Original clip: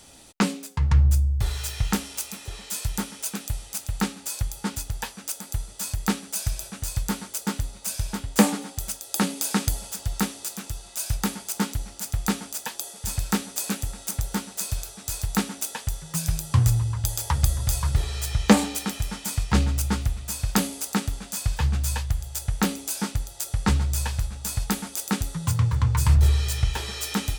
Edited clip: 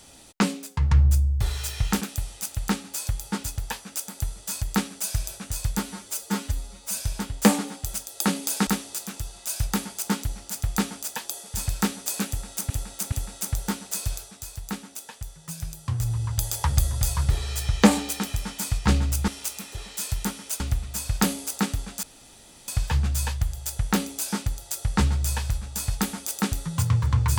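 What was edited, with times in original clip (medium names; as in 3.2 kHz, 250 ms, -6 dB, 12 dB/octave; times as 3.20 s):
2.01–3.33 s: move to 19.94 s
7.15–7.91 s: stretch 1.5×
9.61–10.17 s: delete
13.78–14.20 s: loop, 3 plays
14.81–16.95 s: dip -8.5 dB, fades 0.31 s
21.37 s: insert room tone 0.65 s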